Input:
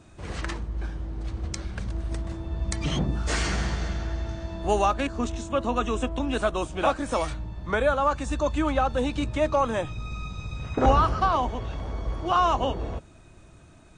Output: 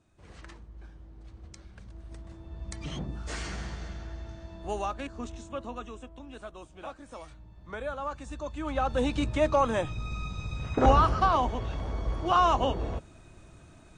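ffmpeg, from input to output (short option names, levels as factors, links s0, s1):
-af "volume=2.24,afade=t=in:st=1.89:d=0.92:silence=0.501187,afade=t=out:st=5.47:d=0.56:silence=0.398107,afade=t=in:st=7.29:d=0.74:silence=0.473151,afade=t=in:st=8.59:d=0.44:silence=0.298538"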